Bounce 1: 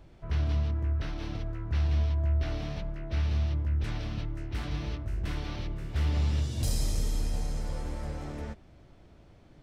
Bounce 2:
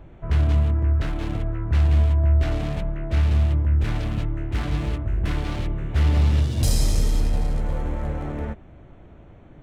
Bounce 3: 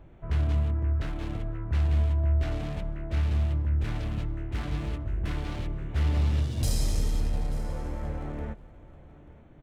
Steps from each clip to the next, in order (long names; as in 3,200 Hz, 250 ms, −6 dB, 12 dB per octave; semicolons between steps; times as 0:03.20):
adaptive Wiener filter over 9 samples; level +9 dB
single-tap delay 887 ms −19.5 dB; level −6.5 dB